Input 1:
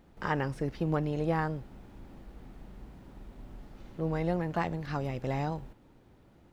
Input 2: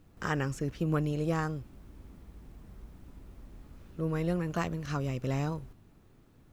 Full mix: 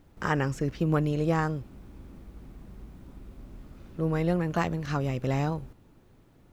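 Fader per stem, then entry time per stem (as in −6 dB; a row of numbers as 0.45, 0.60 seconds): −3.5, 0.0 decibels; 0.00, 0.00 seconds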